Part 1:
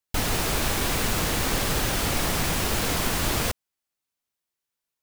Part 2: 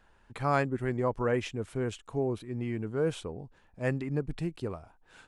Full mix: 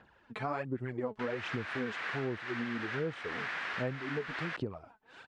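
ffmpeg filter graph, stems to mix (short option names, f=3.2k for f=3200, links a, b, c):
-filter_complex "[0:a]bandpass=f=1.7k:t=q:w=2.5:csg=0,adelay=1050,volume=1dB[a];[1:a]aphaser=in_gain=1:out_gain=1:delay=4.7:decay=0.62:speed=1.3:type=sinusoidal,volume=0.5dB[b];[a][b]amix=inputs=2:normalize=0,highpass=110,lowpass=4.1k,acompressor=threshold=-33dB:ratio=6"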